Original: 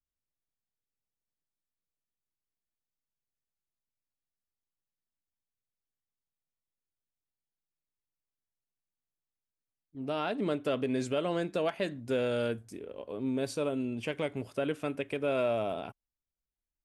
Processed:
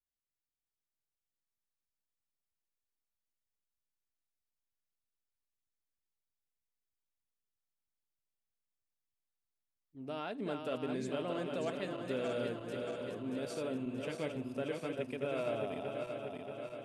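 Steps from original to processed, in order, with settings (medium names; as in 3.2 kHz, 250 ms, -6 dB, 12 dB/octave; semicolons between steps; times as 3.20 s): backward echo that repeats 315 ms, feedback 79%, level -5 dB; trim -8 dB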